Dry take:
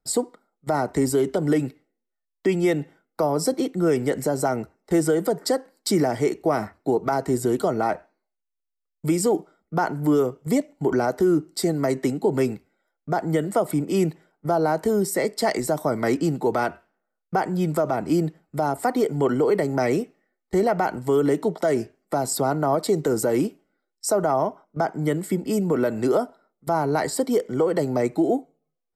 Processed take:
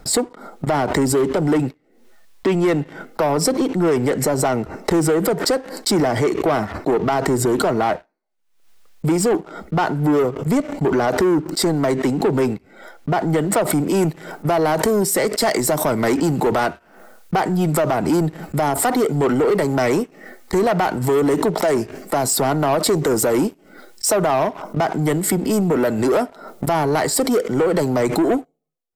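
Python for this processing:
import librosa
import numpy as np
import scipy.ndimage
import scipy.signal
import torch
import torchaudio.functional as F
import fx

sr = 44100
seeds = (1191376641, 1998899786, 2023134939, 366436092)

y = fx.high_shelf(x, sr, hz=6300.0, db=fx.steps((0.0, -7.0), (13.71, 3.0)))
y = fx.leveller(y, sr, passes=2)
y = fx.pre_swell(y, sr, db_per_s=76.0)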